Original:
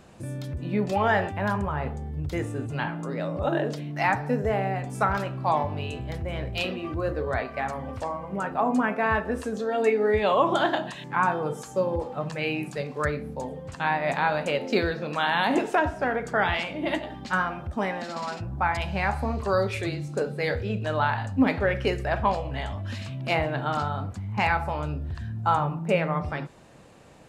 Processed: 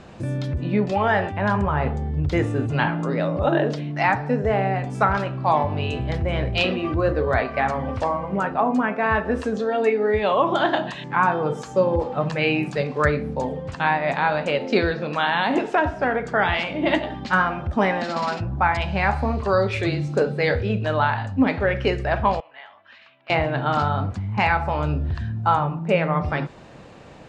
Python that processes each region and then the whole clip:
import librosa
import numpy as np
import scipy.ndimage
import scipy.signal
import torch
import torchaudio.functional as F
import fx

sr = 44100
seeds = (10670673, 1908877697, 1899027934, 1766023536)

y = fx.chain(x, sr, fx.highpass(hz=1400.0, slope=12),
    fx.spacing_loss(db_at_10k=36), at=(22.4, 23.3))
y = scipy.signal.sosfilt(scipy.signal.butter(2, 5100.0, 'lowpass', fs=sr, output='sos'), y)
y = fx.rider(y, sr, range_db=3, speed_s=0.5)
y = F.gain(torch.from_numpy(y), 5.0).numpy()